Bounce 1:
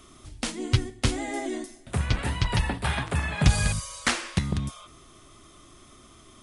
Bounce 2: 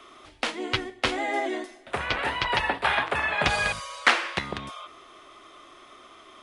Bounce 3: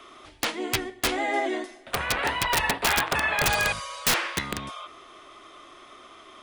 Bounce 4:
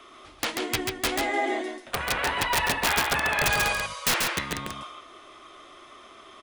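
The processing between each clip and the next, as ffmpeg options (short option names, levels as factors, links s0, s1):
-filter_complex "[0:a]acrossover=split=380 3800:gain=0.0708 1 0.126[s0][s1][s2];[s0][s1][s2]amix=inputs=3:normalize=0,volume=2.37"
-af "aeval=exprs='(mod(6.31*val(0)+1,2)-1)/6.31':c=same,volume=1.19"
-af "aecho=1:1:138:0.631,volume=0.841"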